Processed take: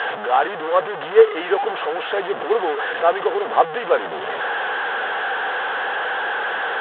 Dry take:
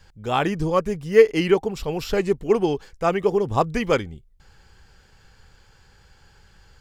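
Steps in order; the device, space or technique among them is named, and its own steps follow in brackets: digital answering machine (band-pass 350–3300 Hz; one-bit delta coder 16 kbps, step -21 dBFS; cabinet simulation 430–4100 Hz, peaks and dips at 480 Hz +7 dB, 740 Hz +9 dB, 1.1 kHz +3 dB, 1.6 kHz +7 dB, 2.3 kHz -8 dB, 3.4 kHz +6 dB)

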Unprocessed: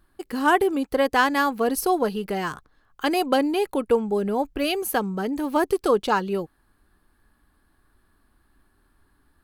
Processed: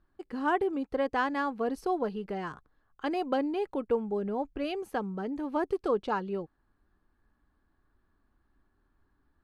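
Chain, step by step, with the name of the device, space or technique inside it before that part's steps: through cloth (low-pass 7 kHz 12 dB/octave; treble shelf 2.6 kHz -11 dB); trim -7.5 dB

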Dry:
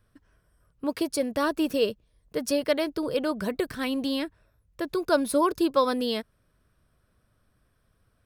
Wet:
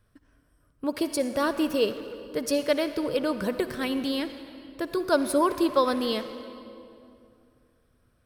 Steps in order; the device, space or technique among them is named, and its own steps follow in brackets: saturated reverb return (on a send at -8 dB: reverberation RT60 2.4 s, pre-delay 52 ms + saturation -24 dBFS, distortion -12 dB)

